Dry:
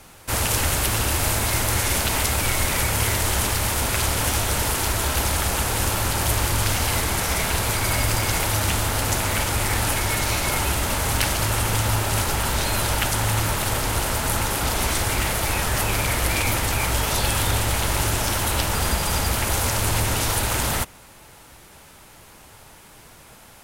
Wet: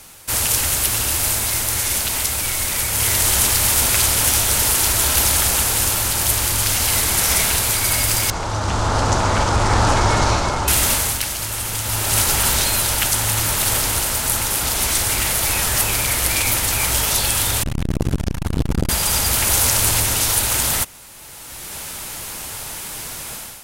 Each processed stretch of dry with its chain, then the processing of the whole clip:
8.30–10.68 s: low-pass 6.7 kHz 24 dB/octave + resonant high shelf 1.6 kHz -10 dB, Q 1.5
17.63–18.89 s: RIAA curve playback + transformer saturation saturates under 340 Hz
whole clip: treble shelf 2.9 kHz +11 dB; level rider; trim -1 dB

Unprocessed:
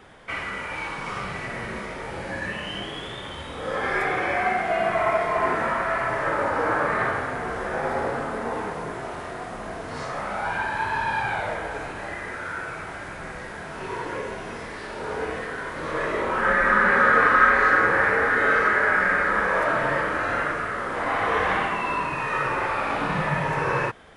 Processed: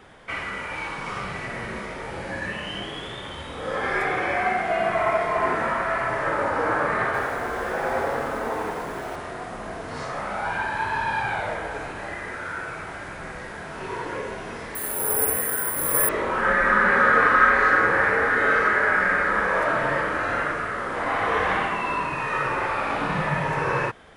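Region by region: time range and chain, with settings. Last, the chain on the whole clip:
7.05–9.16 s: peaking EQ 140 Hz -5 dB 1.6 oct + bit-crushed delay 88 ms, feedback 35%, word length 8-bit, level -3.5 dB
14.75–16.09 s: peaking EQ 7.8 kHz -14.5 dB 0.67 oct + doubling 14 ms -11 dB + careless resampling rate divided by 4×, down filtered, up zero stuff
whole clip: none

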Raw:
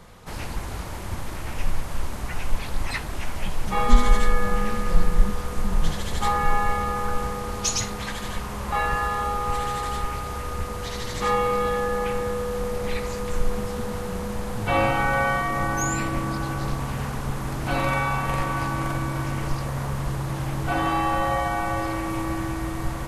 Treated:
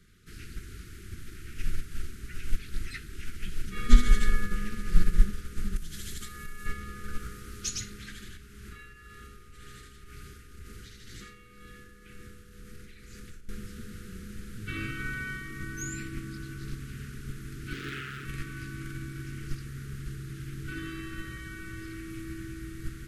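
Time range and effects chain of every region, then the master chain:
5.76–6.66 s: compression 12:1, threshold -22 dBFS + treble shelf 5.4 kHz +12 dB
7.19–7.65 s: treble shelf 10 kHz +8.5 dB + doubling 17 ms -12 dB + loudspeaker Doppler distortion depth 0.26 ms
8.22–13.49 s: compression, threshold -26 dBFS + tremolo 2 Hz, depth 50% + flutter echo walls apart 6.2 m, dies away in 0.21 s
17.73–18.25 s: high-pass 100 Hz 6 dB/octave + loudspeaker Doppler distortion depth 0.81 ms
whole clip: elliptic band-stop 400–1400 Hz, stop band 40 dB; upward expansion 1.5:1, over -28 dBFS

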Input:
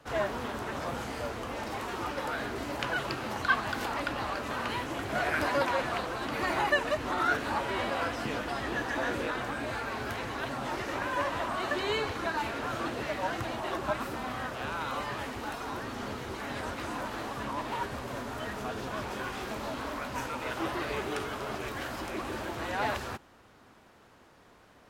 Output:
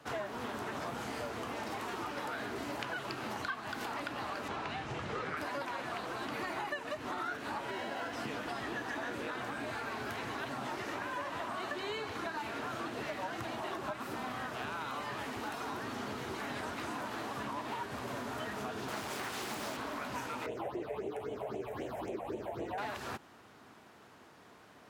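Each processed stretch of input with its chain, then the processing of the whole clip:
4.48–5.37 s: low-pass 6.2 kHz + frequency shift -200 Hz
7.71–8.13 s: comb of notches 1.2 kHz + sliding maximum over 3 samples
18.88–19.77 s: treble shelf 4.4 kHz +12 dB + loudspeaker Doppler distortion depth 0.93 ms
20.46–22.78 s: phase shifter stages 6, 3.8 Hz, lowest notch 300–1400 Hz + FFT filter 260 Hz 0 dB, 450 Hz +12 dB, 1.6 kHz -8 dB
whole clip: high-pass 110 Hz 12 dB/octave; band-stop 530 Hz, Q 12; compression 6:1, threshold -37 dBFS; trim +1 dB

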